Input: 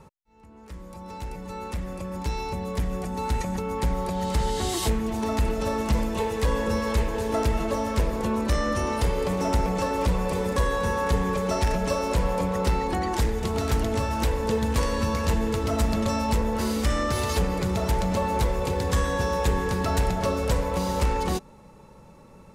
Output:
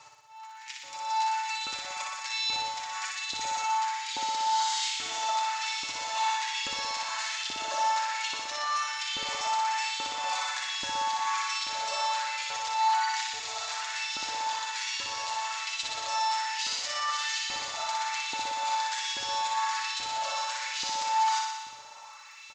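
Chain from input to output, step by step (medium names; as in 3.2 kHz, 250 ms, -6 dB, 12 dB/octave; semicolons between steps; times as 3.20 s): FFT filter 120 Hz 0 dB, 170 Hz -28 dB, 450 Hz -24 dB, 660 Hz -4 dB, 4.4 kHz +12 dB, 7.1 kHz +12 dB, 11 kHz -24 dB; reverse echo 84 ms -14.5 dB; reverse; compression 5:1, threshold -32 dBFS, peak gain reduction 14 dB; reverse; crackle 34 per s -52 dBFS; comb 6.8 ms, depth 49%; peak limiter -25.5 dBFS, peak gain reduction 7 dB; LFO high-pass saw up 1.2 Hz 280–3500 Hz; on a send: flutter echo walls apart 10.3 m, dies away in 1.2 s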